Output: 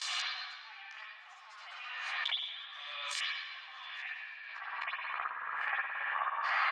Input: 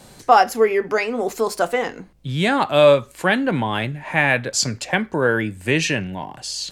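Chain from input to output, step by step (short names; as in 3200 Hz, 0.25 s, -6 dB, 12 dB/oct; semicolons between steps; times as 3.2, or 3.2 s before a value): minimum comb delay 1.7 ms; steep high-pass 870 Hz 36 dB/oct; gate with hold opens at -43 dBFS; LPF 6000 Hz 24 dB/oct, from 4.46 s 1700 Hz; tilt shelf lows -9.5 dB, about 1100 Hz; compressor, threshold -27 dBFS, peak gain reduction 15 dB; flipped gate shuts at -31 dBFS, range -35 dB; doubler 14 ms -5 dB; reverb RT60 1.3 s, pre-delay 55 ms, DRR -12.5 dB; backwards sustainer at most 25 dB/s; gain +2 dB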